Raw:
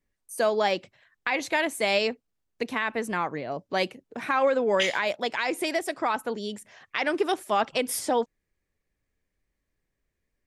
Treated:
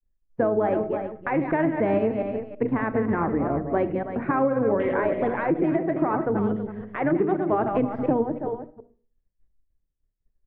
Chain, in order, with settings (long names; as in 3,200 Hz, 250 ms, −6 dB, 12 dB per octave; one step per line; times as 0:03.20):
delay that plays each chunk backwards 139 ms, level −7.5 dB
low-pass filter 1,900 Hz 24 dB per octave
spectral tilt −3.5 dB per octave
mains-hum notches 60/120/180/240/300/360/420/480 Hz
downward expander −50 dBFS
single-tap delay 325 ms −12 dB
on a send at −14.5 dB: convolution reverb RT60 0.40 s, pre-delay 15 ms
on the sum: dynamic equaliser 310 Hz, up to +7 dB, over −39 dBFS, Q 2.5
pitch-shifted copies added −12 semitones −10 dB
downward compressor 6 to 1, threshold −20 dBFS, peak gain reduction 9 dB
level +1.5 dB